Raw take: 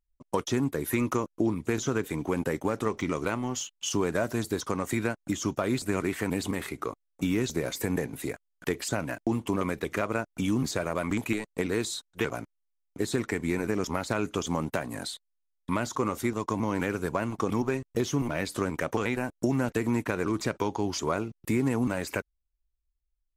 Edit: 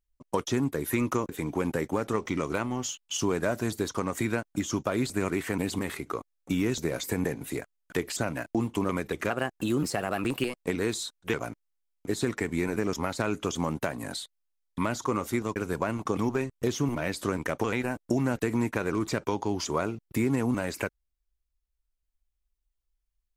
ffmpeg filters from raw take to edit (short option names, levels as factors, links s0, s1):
-filter_complex "[0:a]asplit=5[s0][s1][s2][s3][s4];[s0]atrim=end=1.292[s5];[s1]atrim=start=2.008:end=10.024[s6];[s2]atrim=start=10.02:end=11.48,asetpts=PTS-STARTPTS,asetrate=50715,aresample=44100[s7];[s3]atrim=start=11.476:end=16.472[s8];[s4]atrim=start=16.888[s9];[s5][s6]acrossfade=d=0.004:c1=hsin:c2=hsin[s10];[s10][s7]acrossfade=d=0.004:c1=hsin:c2=hsin[s11];[s11][s8]acrossfade=d=0.004:c1=hsin:c2=hsin[s12];[s12][s9]acrossfade=d=0.004:c1=hsin:c2=hsin"